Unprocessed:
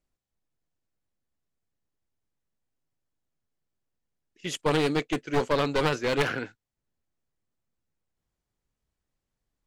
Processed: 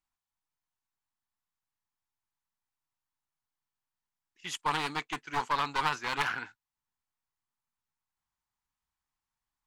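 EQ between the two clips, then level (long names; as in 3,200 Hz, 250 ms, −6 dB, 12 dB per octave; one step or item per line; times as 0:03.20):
low shelf with overshoot 700 Hz −9 dB, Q 3
−3.5 dB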